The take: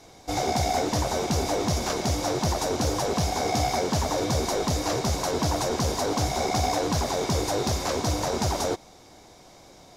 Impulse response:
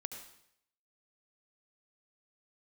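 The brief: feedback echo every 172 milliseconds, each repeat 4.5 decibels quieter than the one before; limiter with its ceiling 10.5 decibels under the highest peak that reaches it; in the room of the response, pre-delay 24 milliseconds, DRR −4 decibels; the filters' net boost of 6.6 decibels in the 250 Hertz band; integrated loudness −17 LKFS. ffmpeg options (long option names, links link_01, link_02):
-filter_complex "[0:a]equalizer=frequency=250:width_type=o:gain=8.5,alimiter=limit=-20dB:level=0:latency=1,aecho=1:1:172|344|516|688|860|1032|1204|1376|1548:0.596|0.357|0.214|0.129|0.0772|0.0463|0.0278|0.0167|0.01,asplit=2[link_01][link_02];[1:a]atrim=start_sample=2205,adelay=24[link_03];[link_02][link_03]afir=irnorm=-1:irlink=0,volume=6dB[link_04];[link_01][link_04]amix=inputs=2:normalize=0,volume=4dB"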